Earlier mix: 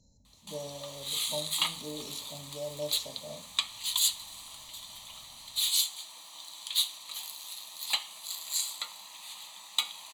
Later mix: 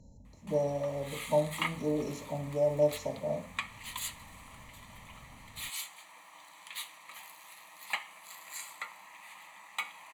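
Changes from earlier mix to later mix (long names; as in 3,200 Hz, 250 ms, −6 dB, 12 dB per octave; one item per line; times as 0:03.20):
speech +10.0 dB
master: add high shelf with overshoot 2,800 Hz −10.5 dB, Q 3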